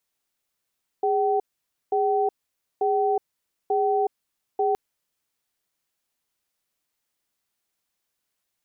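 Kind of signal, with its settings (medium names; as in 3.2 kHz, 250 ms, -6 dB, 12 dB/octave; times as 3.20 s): cadence 411 Hz, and 765 Hz, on 0.37 s, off 0.52 s, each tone -22 dBFS 3.72 s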